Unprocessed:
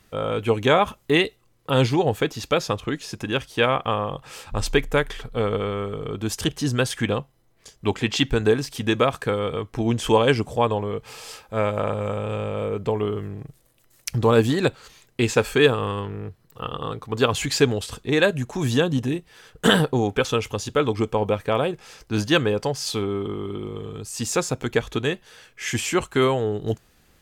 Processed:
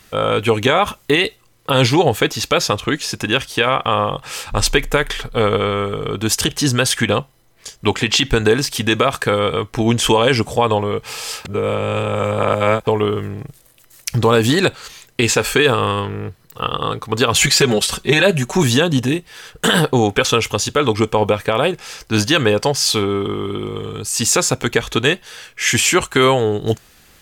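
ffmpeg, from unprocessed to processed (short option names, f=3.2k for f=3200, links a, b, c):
-filter_complex "[0:a]asettb=1/sr,asplit=3[a][b][c];[a]atrim=end=17.354[d];[b]atrim=start=17.35:end=18.63,asetpts=PTS-STARTPTS,afade=t=in:d=0.004:c=qsin,afade=t=out:st=1.276:d=0.004:c=qsin,aecho=1:1:5.3:0.98,atrim=end_sample=56448[e];[c]atrim=start=18.626[f];[d][e]acrossfade=d=0.004:c1=hsin:c2=qsin[g];[g][f]acrossfade=d=0.004:c1=qsin:c2=hsin,asplit=3[h][i][j];[h]atrim=end=11.452[k];[i]atrim=start=11.448:end=12.872,asetpts=PTS-STARTPTS,areverse[l];[j]atrim=start=12.868[m];[k][l]acrossfade=d=0.004:c1=hsin:c2=hsin[n];[n][m]acrossfade=d=0.004:c1=hsin:c2=hsin,tiltshelf=f=970:g=-3.5,alimiter=level_in=12dB:limit=-1dB:release=50:level=0:latency=1,volume=-2.5dB"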